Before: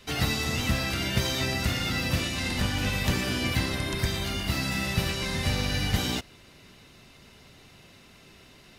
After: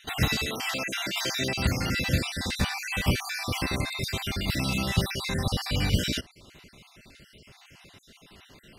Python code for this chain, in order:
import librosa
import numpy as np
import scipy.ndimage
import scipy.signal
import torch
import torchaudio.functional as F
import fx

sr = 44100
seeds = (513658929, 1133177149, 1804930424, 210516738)

y = fx.spec_dropout(x, sr, seeds[0], share_pct=46)
y = fx.highpass(y, sr, hz=fx.line((0.45, 340.0), (1.57, 140.0)), slope=12, at=(0.45, 1.57), fade=0.02)
y = y * librosa.db_to_amplitude(2.5)